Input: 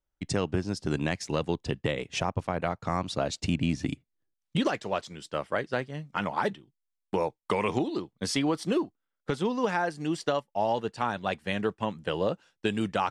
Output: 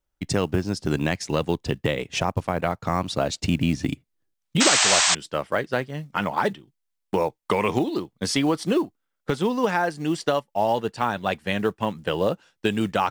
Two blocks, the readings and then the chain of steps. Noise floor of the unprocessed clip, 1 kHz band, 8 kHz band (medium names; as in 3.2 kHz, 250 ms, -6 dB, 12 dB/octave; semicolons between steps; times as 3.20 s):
-84 dBFS, +5.5 dB, +16.5 dB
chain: short-mantissa float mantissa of 4-bit; painted sound noise, 4.60–5.15 s, 600–8500 Hz -24 dBFS; trim +5 dB